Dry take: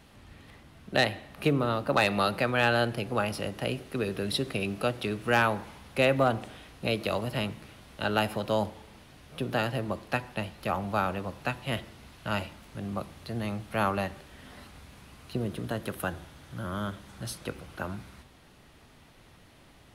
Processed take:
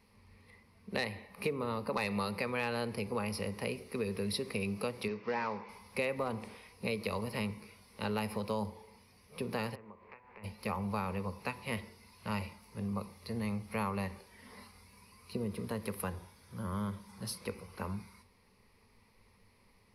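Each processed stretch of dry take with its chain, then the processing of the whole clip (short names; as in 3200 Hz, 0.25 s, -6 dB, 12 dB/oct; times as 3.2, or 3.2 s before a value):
5.08–5.69 CVSD 32 kbps + HPF 160 Hz 6 dB/oct + tone controls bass -5 dB, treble -11 dB
9.74–10.43 spectral contrast lowered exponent 0.61 + LPF 2400 Hz 24 dB/oct + compressor 10:1, threshold -45 dBFS
whole clip: spectral noise reduction 7 dB; ripple EQ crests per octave 0.88, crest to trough 12 dB; compressor 3:1, threshold -27 dBFS; gain -5 dB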